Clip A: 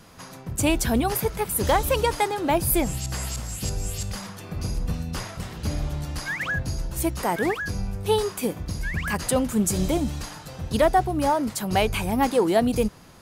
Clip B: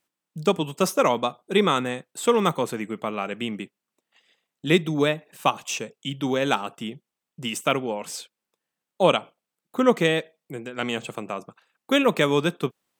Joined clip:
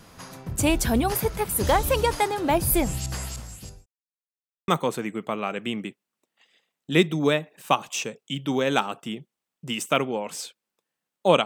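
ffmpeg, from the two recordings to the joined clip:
ffmpeg -i cue0.wav -i cue1.wav -filter_complex "[0:a]apad=whole_dur=11.45,atrim=end=11.45,asplit=2[link_01][link_02];[link_01]atrim=end=3.86,asetpts=PTS-STARTPTS,afade=type=out:start_time=3.01:duration=0.85[link_03];[link_02]atrim=start=3.86:end=4.68,asetpts=PTS-STARTPTS,volume=0[link_04];[1:a]atrim=start=2.43:end=9.2,asetpts=PTS-STARTPTS,afade=type=in:duration=0.004:curve=hsin[link_05];[link_03][link_04][link_05]concat=n=3:v=0:a=1" out.wav

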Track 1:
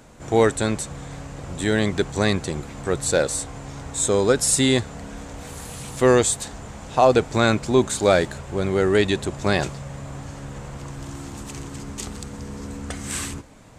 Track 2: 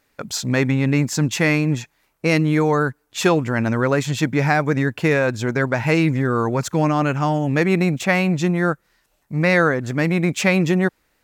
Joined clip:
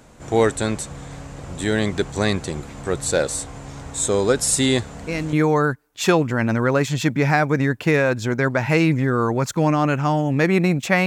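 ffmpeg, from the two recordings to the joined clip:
ffmpeg -i cue0.wav -i cue1.wav -filter_complex "[1:a]asplit=2[link_01][link_02];[0:a]apad=whole_dur=11.06,atrim=end=11.06,atrim=end=5.332[link_03];[link_02]atrim=start=2.498:end=8.23[link_04];[link_01]atrim=start=1.78:end=2.5,asetpts=PTS-STARTPTS,volume=-8.5dB,afade=type=in:duration=0.004:curve=hsin,afade=type=out:start_time=0.716:duration=0.004:curve=hsin,adelay=203301S[link_05];[link_03][link_04]acrossfade=duration=0.004:curve1=hsin:curve2=hsin[link_06];[link_06][link_05]amix=inputs=2:normalize=0" out.wav

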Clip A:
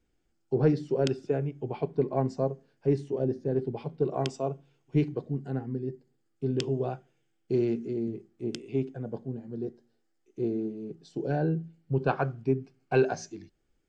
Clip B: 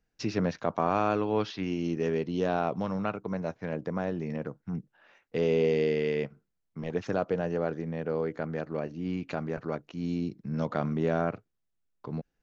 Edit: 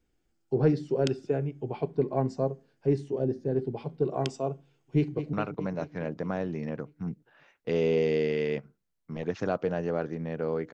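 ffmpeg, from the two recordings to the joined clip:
ffmpeg -i cue0.wav -i cue1.wav -filter_complex "[0:a]apad=whole_dur=10.73,atrim=end=10.73,atrim=end=5.332[link_01];[1:a]atrim=start=2.998:end=8.4[link_02];[link_01][link_02]acrossfade=duration=0.004:curve1=hsin:curve2=hsin,asplit=2[link_03][link_04];[link_04]afade=type=in:start_time=4.95:duration=0.01,afade=type=out:start_time=5.33:duration=0.01,aecho=0:1:210|420|630|840|1050|1260|1470|1680|1890|2100:0.316228|0.221359|0.154952|0.108466|0.0759263|0.0531484|0.0372039|0.0260427|0.0182299|0.0127609[link_05];[link_03][link_05]amix=inputs=2:normalize=0" out.wav

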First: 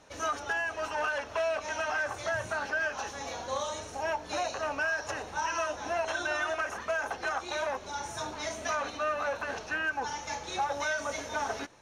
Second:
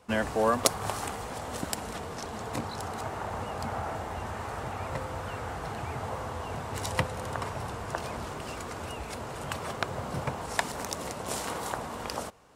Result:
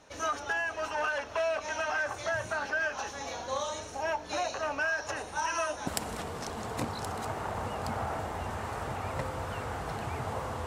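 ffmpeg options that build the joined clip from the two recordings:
ffmpeg -i cue0.wav -i cue1.wav -filter_complex "[0:a]asettb=1/sr,asplit=3[link_01][link_02][link_03];[link_01]atrim=end=5.164[link_04];[link_02]atrim=start=5.16:end=5.87,asetpts=PTS-STARTPTS,afade=type=in:duration=0.004:curve=qsin,afade=type=out:start_time=0.706:duration=0.004:curve=qsin,equalizer=frequency=9500:width=2.4:gain=13[link_05];[link_03]atrim=start=5.866[link_06];[link_04][link_05]acrossfade=duration=0.004:curve1=hsin:curve2=qsin[link_07];[link_07][link_06]acrossfade=duration=0.004:curve1=qsin:curve2=hsin,apad=whole_dur=10.66,atrim=end=10.66,atrim=end=5.872[link_08];[1:a]atrim=start=1.628:end=6.42[link_09];[link_08][link_09]acrossfade=duration=0.004:curve1=hsin:curve2=hsin" out.wav

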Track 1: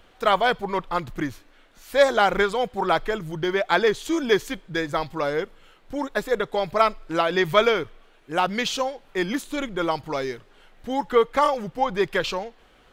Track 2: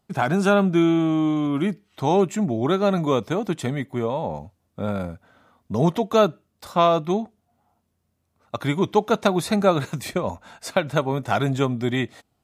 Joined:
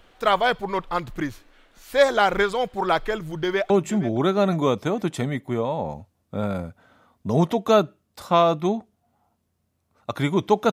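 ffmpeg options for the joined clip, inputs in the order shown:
ffmpeg -i cue0.wav -i cue1.wav -filter_complex "[0:a]apad=whole_dur=10.72,atrim=end=10.72,atrim=end=3.702[link_01];[1:a]atrim=start=2.148:end=9.17[link_02];[link_01][link_02]acrossfade=duration=0.004:curve1=hsin:curve2=hsin,asplit=2[link_03][link_04];[link_04]afade=type=in:start_time=3.24:duration=0.01,afade=type=out:start_time=3.7:duration=0.01,aecho=0:1:470|940|1410:0.177828|0.0622398|0.0217839[link_05];[link_03][link_05]amix=inputs=2:normalize=0" out.wav

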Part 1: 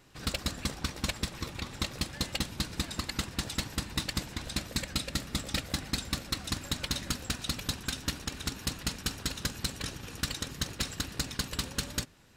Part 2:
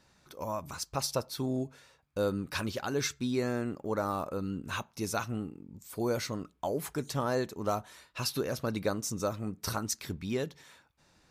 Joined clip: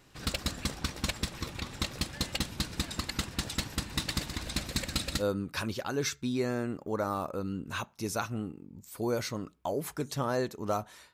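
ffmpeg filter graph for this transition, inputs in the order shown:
ffmpeg -i cue0.wav -i cue1.wav -filter_complex "[0:a]asettb=1/sr,asplit=3[link_01][link_02][link_03];[link_01]atrim=end=3.804[link_04];[link_02]atrim=start=3.8:end=5.24,asetpts=PTS-STARTPTS,afade=type=in:duration=0.004:curve=qsin,afade=type=out:start_time=1.436:duration=0.004:curve=qsin,aecho=1:1:125|250|375|500|625|750:0.355|0.188|0.0997|0.0528|0.028|0.0148,atrim=end_sample=63504[link_05];[link_03]atrim=start=5.236[link_06];[link_04][link_05]acrossfade=duration=0.004:curve1=hsin:curve2=qsin[link_07];[link_07][link_06]acrossfade=duration=0.004:curve1=qsin:curve2=hsin,apad=whole_dur=11.13,atrim=end=11.13,atrim=end=5.24,asetpts=PTS-STARTPTS[link_08];[1:a]atrim=start=2.14:end=8.11,asetpts=PTS-STARTPTS[link_09];[link_08][link_09]acrossfade=duration=0.08:curve1=tri:curve2=tri" out.wav

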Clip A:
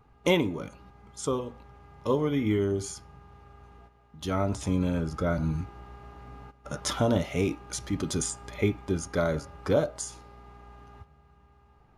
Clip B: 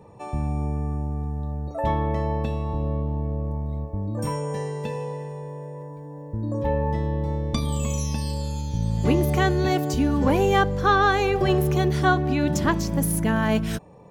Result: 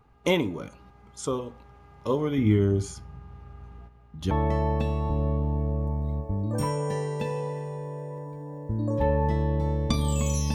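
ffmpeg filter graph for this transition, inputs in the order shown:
ffmpeg -i cue0.wav -i cue1.wav -filter_complex "[0:a]asettb=1/sr,asplit=3[link_01][link_02][link_03];[link_01]atrim=end=2.384[link_04];[link_02]atrim=start=2.38:end=4.31,asetpts=PTS-STARTPTS,afade=type=in:duration=0.004:curve=qsin,afade=type=out:start_time=1.926:duration=0.004:curve=qsin,bass=frequency=250:gain=9,treble=frequency=4000:gain=-3[link_05];[link_03]atrim=start=4.306[link_06];[link_04][link_05]acrossfade=duration=0.004:curve1=hsin:curve2=qsin[link_07];[link_07][link_06]acrossfade=duration=0.004:curve1=qsin:curve2=hsin,apad=whole_dur=10.54,atrim=end=10.54,atrim=end=4.312[link_08];[1:a]atrim=start=1.948:end=8.18[link_09];[link_08][link_09]acrossfade=duration=0.004:curve1=hsin:curve2=hsin" out.wav

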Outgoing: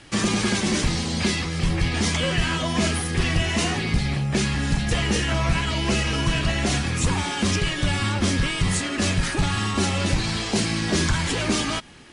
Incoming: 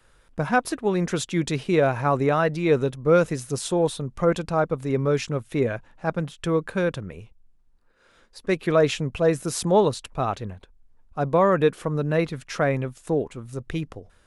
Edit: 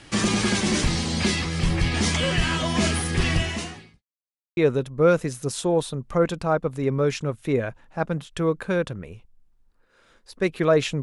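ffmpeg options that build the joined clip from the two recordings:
ffmpeg -i cue0.wav -i cue1.wav -filter_complex "[0:a]apad=whole_dur=11.02,atrim=end=11.02,asplit=2[link_01][link_02];[link_01]atrim=end=4.03,asetpts=PTS-STARTPTS,afade=type=out:start_time=3.35:duration=0.68:curve=qua[link_03];[link_02]atrim=start=4.03:end=4.57,asetpts=PTS-STARTPTS,volume=0[link_04];[1:a]atrim=start=2.64:end=9.09,asetpts=PTS-STARTPTS,afade=type=in:duration=0.004:curve=hsin[link_05];[link_03][link_04][link_05]concat=n=3:v=0:a=1" out.wav

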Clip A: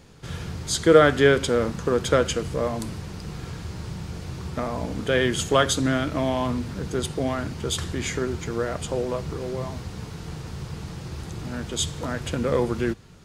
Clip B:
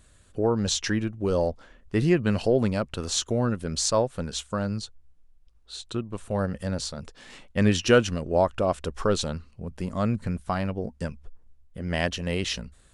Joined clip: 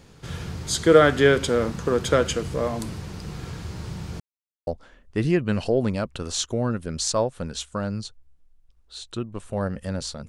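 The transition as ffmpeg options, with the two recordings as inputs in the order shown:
ffmpeg -i cue0.wav -i cue1.wav -filter_complex "[0:a]apad=whole_dur=10.28,atrim=end=10.28,asplit=2[link_01][link_02];[link_01]atrim=end=4.2,asetpts=PTS-STARTPTS,afade=type=out:start_time=4.196:duration=0.004:curve=hsin[link_03];[link_02]atrim=start=4.2:end=4.67,asetpts=PTS-STARTPTS,volume=0[link_04];[1:a]atrim=start=1.45:end=7.06,asetpts=PTS-STARTPTS,afade=type=in:duration=0.004:curve=hsin[link_05];[link_03][link_04][link_05]concat=n=3:v=0:a=1" out.wav

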